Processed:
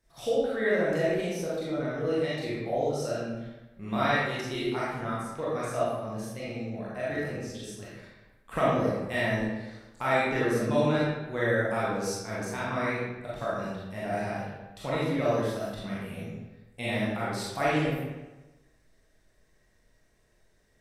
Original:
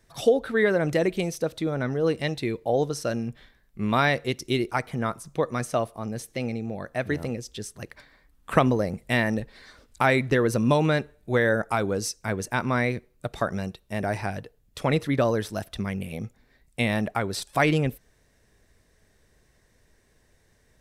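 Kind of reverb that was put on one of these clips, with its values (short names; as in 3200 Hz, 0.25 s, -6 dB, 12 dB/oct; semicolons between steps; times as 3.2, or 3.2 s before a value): digital reverb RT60 1.1 s, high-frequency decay 0.75×, pre-delay 0 ms, DRR -9 dB; gain -13 dB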